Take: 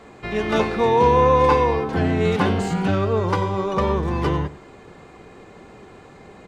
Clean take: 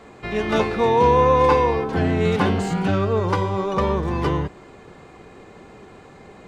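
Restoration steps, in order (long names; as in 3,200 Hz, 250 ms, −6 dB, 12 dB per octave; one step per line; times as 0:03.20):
echo removal 95 ms −16 dB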